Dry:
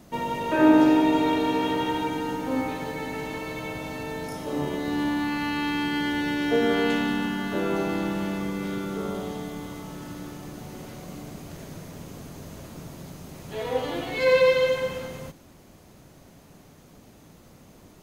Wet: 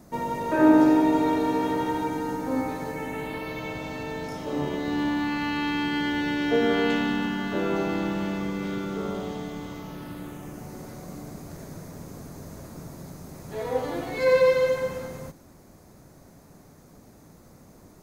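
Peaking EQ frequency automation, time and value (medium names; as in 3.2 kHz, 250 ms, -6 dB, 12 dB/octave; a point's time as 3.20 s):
peaking EQ -11.5 dB 0.65 oct
2.84 s 3 kHz
3.72 s 11 kHz
9.68 s 11 kHz
10.75 s 3 kHz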